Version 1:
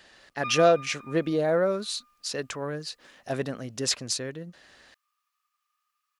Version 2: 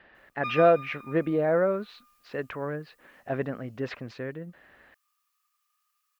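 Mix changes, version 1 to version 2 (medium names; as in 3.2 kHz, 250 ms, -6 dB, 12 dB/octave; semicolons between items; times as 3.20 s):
speech: add low-pass 2.3 kHz 24 dB/octave; master: add treble shelf 6.4 kHz +9.5 dB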